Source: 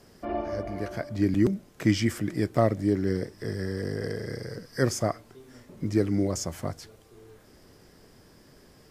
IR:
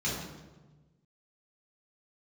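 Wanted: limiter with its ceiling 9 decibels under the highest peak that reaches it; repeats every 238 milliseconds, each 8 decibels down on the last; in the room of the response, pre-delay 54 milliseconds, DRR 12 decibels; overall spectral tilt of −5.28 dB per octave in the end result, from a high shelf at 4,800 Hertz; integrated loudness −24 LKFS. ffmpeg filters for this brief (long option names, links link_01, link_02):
-filter_complex "[0:a]highshelf=frequency=4800:gain=6,alimiter=limit=-17dB:level=0:latency=1,aecho=1:1:238|476|714|952|1190:0.398|0.159|0.0637|0.0255|0.0102,asplit=2[link_01][link_02];[1:a]atrim=start_sample=2205,adelay=54[link_03];[link_02][link_03]afir=irnorm=-1:irlink=0,volume=-19.5dB[link_04];[link_01][link_04]amix=inputs=2:normalize=0,volume=5.5dB"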